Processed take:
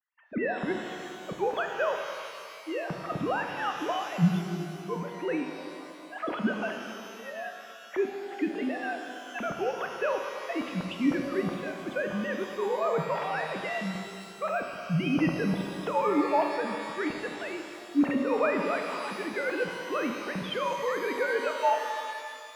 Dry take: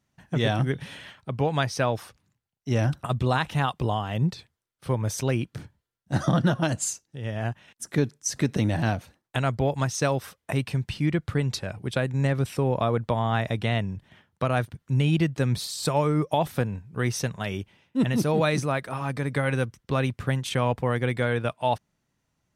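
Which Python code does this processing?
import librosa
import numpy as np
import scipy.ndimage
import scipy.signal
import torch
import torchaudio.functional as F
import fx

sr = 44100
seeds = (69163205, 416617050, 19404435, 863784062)

y = fx.sine_speech(x, sr)
y = fx.rev_shimmer(y, sr, seeds[0], rt60_s=2.4, semitones=12, shimmer_db=-8, drr_db=3.5)
y = F.gain(torch.from_numpy(y), -6.0).numpy()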